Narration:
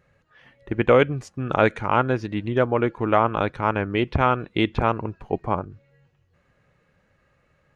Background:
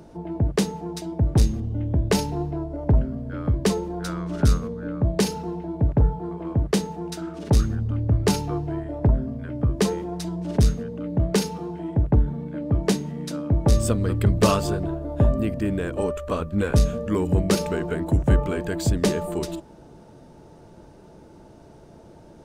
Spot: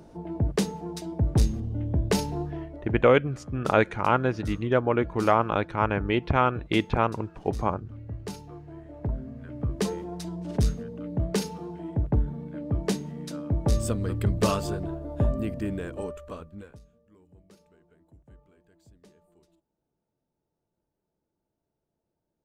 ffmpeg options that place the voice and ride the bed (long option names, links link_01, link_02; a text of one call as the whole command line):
ffmpeg -i stem1.wav -i stem2.wav -filter_complex "[0:a]adelay=2150,volume=-2.5dB[link_01];[1:a]volume=7.5dB,afade=type=out:start_time=2.36:duration=0.59:silence=0.223872,afade=type=in:start_time=8.64:duration=1.32:silence=0.281838,afade=type=out:start_time=15.63:duration=1.16:silence=0.0316228[link_02];[link_01][link_02]amix=inputs=2:normalize=0" out.wav